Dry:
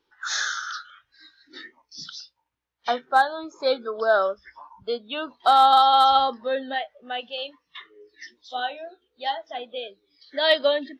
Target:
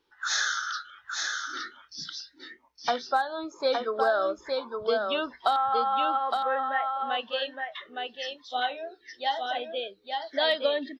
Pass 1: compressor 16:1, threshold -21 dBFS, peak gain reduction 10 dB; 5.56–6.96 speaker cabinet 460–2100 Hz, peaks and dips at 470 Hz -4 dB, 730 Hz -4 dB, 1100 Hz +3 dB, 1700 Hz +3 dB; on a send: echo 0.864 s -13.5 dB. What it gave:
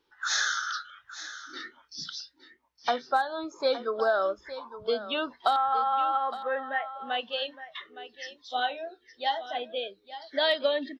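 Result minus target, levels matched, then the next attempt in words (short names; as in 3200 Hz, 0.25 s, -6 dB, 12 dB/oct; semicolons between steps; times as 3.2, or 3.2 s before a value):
echo-to-direct -9.5 dB
compressor 16:1, threshold -21 dBFS, peak gain reduction 10 dB; 5.56–6.96 speaker cabinet 460–2100 Hz, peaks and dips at 470 Hz -4 dB, 730 Hz -4 dB, 1100 Hz +3 dB, 1700 Hz +3 dB; on a send: echo 0.864 s -4 dB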